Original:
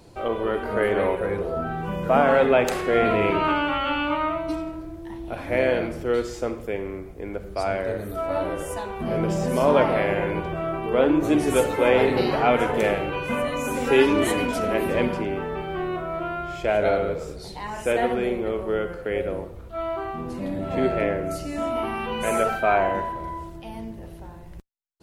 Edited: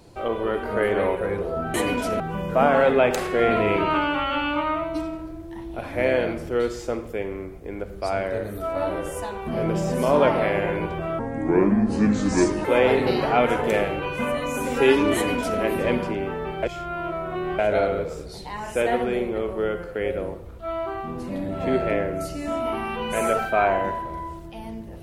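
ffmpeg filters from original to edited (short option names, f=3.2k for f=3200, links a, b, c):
-filter_complex "[0:a]asplit=7[a][b][c][d][e][f][g];[a]atrim=end=1.742[h];[b]atrim=start=14.248:end=14.712[i];[c]atrim=start=1.738:end=10.734[j];[d]atrim=start=10.73:end=11.75,asetpts=PTS-STARTPTS,asetrate=30870,aresample=44100,atrim=end_sample=64260,asetpts=PTS-STARTPTS[k];[e]atrim=start=11.746:end=15.732[l];[f]atrim=start=15.728:end=16.692,asetpts=PTS-STARTPTS,areverse[m];[g]atrim=start=16.688[n];[h][i]acrossfade=d=0.004:c1=hsin:c2=hsin[o];[o][j]acrossfade=d=0.004:c1=hsin:c2=hsin[p];[p][k]acrossfade=d=0.004:c1=hsin:c2=hsin[q];[q][l]acrossfade=d=0.004:c1=hsin:c2=hsin[r];[r][m]acrossfade=d=0.004:c1=hsin:c2=hsin[s];[s][n]acrossfade=d=0.004:c1=hsin:c2=hsin"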